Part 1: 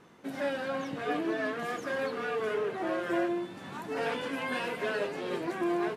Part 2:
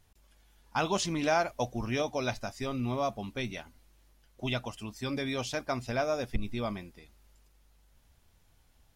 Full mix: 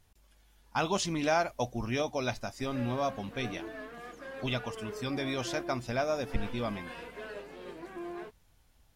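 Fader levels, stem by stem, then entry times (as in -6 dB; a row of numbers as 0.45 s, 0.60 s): -11.0 dB, -0.5 dB; 2.35 s, 0.00 s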